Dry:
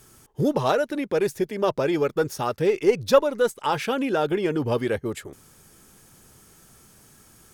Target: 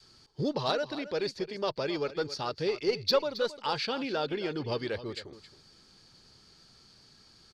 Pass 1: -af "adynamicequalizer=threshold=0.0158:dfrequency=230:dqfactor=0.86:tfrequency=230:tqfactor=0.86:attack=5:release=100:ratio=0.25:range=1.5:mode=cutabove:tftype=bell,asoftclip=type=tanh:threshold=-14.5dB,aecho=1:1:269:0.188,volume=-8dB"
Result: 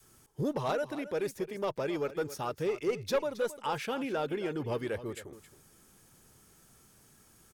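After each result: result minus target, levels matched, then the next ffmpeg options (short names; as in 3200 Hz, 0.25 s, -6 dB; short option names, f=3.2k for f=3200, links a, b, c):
4000 Hz band -8.5 dB; soft clip: distortion +9 dB
-af "adynamicequalizer=threshold=0.0158:dfrequency=230:dqfactor=0.86:tfrequency=230:tqfactor=0.86:attack=5:release=100:ratio=0.25:range=1.5:mode=cutabove:tftype=bell,lowpass=f=4.5k:t=q:w=11,asoftclip=type=tanh:threshold=-14.5dB,aecho=1:1:269:0.188,volume=-8dB"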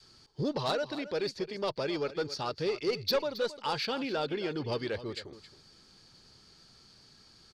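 soft clip: distortion +10 dB
-af "adynamicequalizer=threshold=0.0158:dfrequency=230:dqfactor=0.86:tfrequency=230:tqfactor=0.86:attack=5:release=100:ratio=0.25:range=1.5:mode=cutabove:tftype=bell,lowpass=f=4.5k:t=q:w=11,asoftclip=type=tanh:threshold=-6.5dB,aecho=1:1:269:0.188,volume=-8dB"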